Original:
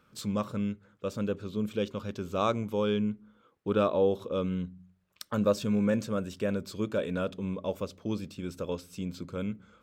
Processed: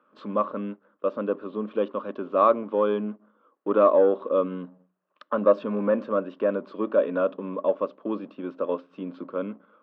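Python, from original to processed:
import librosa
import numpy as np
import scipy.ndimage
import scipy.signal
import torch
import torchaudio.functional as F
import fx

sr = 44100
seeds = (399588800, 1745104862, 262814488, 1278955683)

y = fx.leveller(x, sr, passes=1)
y = fx.cabinet(y, sr, low_hz=240.0, low_slope=24, high_hz=2600.0, hz=(290.0, 590.0, 1100.0, 2200.0), db=(5, 8, 10, -9))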